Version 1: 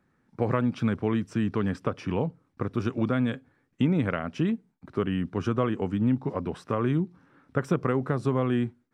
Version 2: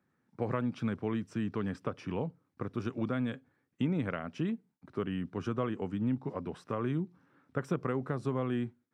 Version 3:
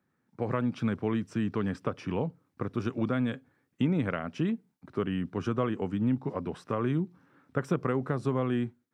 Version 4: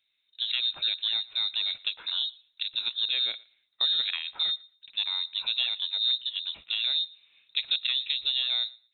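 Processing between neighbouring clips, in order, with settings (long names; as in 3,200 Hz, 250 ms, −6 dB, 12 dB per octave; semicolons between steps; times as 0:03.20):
high-pass filter 84 Hz; level −7 dB
automatic gain control gain up to 4 dB
voice inversion scrambler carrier 3,900 Hz; feedback echo with a high-pass in the loop 116 ms, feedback 18%, high-pass 420 Hz, level −23.5 dB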